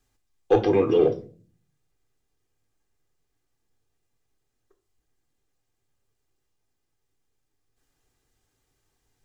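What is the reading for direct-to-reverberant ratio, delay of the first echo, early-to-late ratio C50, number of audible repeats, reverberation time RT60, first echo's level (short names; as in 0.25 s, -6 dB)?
7.5 dB, none, 15.0 dB, none, 0.40 s, none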